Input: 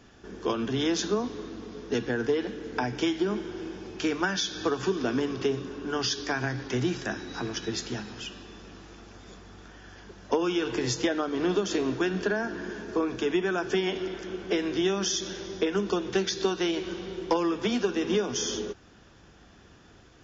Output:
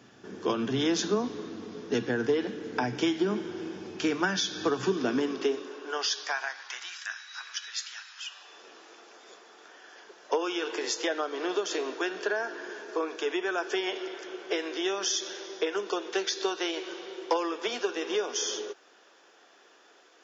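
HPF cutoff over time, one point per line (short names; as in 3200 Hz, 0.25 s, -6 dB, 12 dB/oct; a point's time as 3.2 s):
HPF 24 dB/oct
4.96 s 110 Hz
5.54 s 300 Hz
7.04 s 1300 Hz
8.14 s 1300 Hz
8.65 s 400 Hz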